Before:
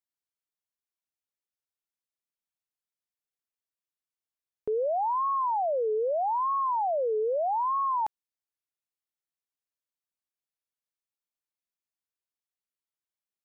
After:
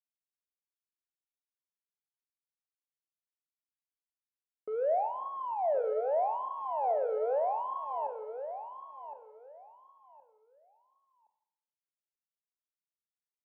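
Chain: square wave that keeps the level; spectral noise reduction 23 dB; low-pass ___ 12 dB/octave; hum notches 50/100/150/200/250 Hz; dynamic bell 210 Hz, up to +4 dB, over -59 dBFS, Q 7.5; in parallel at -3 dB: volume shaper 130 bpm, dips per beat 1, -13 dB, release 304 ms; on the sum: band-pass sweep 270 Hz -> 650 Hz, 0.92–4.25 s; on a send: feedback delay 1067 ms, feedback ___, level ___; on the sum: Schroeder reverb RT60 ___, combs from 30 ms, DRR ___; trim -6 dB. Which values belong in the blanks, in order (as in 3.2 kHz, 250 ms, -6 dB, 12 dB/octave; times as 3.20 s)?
1 kHz, 22%, -9.5 dB, 0.79 s, 8.5 dB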